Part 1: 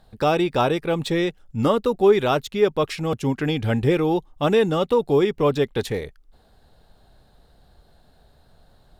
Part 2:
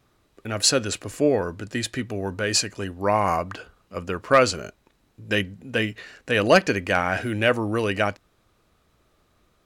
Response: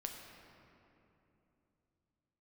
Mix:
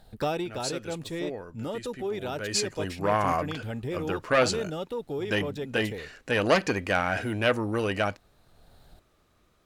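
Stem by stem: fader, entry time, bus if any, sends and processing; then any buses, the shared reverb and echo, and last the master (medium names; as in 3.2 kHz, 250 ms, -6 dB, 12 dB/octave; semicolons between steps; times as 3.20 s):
+0.5 dB, 0.00 s, no send, treble shelf 7.8 kHz +6.5 dB; band-stop 1.1 kHz, Q 5.4; peak limiter -12.5 dBFS, peak gain reduction 6 dB; auto duck -12 dB, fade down 0.35 s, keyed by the second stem
2.14 s -15 dB -> 2.75 s -2 dB, 0.00 s, no send, none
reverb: none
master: transformer saturation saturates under 990 Hz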